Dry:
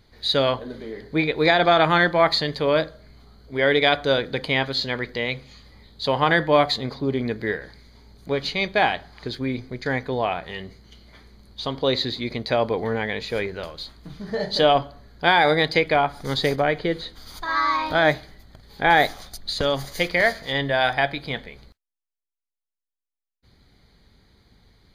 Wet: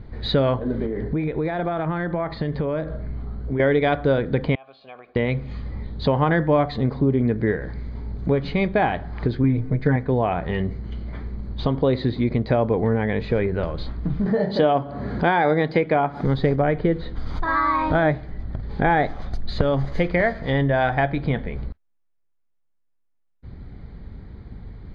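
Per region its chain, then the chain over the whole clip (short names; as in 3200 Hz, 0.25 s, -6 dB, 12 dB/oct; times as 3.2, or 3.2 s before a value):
0.86–3.6 air absorption 110 m + compressor 3:1, threshold -36 dBFS
4.55–5.16 compressor 4:1, threshold -30 dBFS + vowel filter a + tilt shelf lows -7 dB, about 1500 Hz
9.43–9.96 high shelf 4300 Hz -8 dB + comb 6.6 ms, depth 91%
14.26–16.25 HPF 160 Hz + upward compressor, threshold -27 dBFS
whole clip: LPF 1900 Hz 12 dB/oct; low shelf 330 Hz +12 dB; compressor 2.5:1, threshold -30 dBFS; gain +8.5 dB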